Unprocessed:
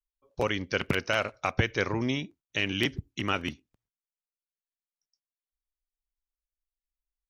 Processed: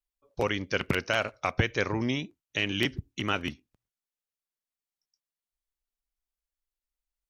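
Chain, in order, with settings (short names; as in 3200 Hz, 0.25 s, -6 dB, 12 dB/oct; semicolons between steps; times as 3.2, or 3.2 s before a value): wow and flutter 50 cents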